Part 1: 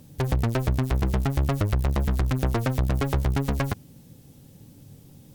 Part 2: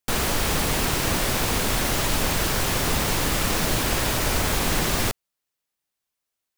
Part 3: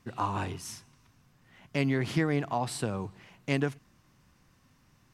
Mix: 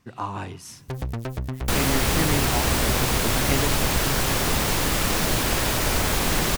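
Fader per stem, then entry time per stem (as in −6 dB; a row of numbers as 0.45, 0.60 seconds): −6.0, +0.5, +0.5 decibels; 0.70, 1.60, 0.00 seconds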